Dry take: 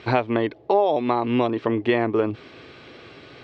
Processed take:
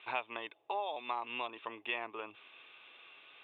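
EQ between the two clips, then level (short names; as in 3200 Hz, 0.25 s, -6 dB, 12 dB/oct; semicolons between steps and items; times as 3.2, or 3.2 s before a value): rippled Chebyshev low-pass 3700 Hz, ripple 9 dB; differentiator; +6.0 dB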